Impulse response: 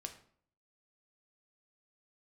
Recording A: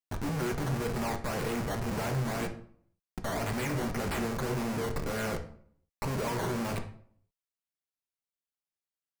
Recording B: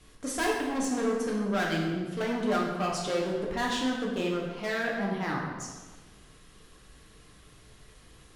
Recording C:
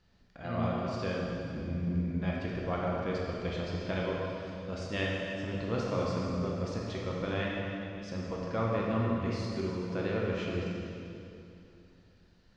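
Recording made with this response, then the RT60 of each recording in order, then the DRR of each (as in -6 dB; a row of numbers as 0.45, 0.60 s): A; 0.55, 1.3, 2.8 s; 5.0, -3.0, -4.0 dB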